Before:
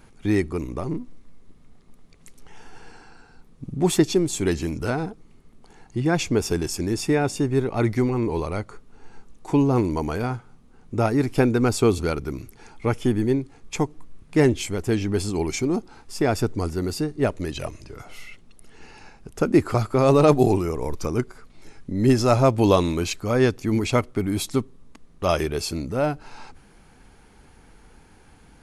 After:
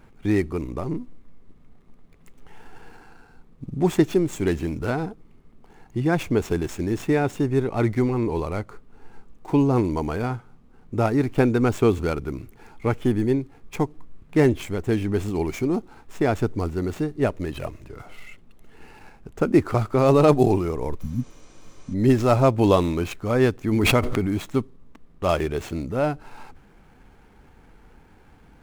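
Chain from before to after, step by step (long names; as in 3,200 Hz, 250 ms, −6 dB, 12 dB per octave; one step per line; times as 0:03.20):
running median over 9 samples
0:21.03–0:21.91: healed spectral selection 290–10,000 Hz before
0:23.72–0:24.37: background raised ahead of every attack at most 22 dB per second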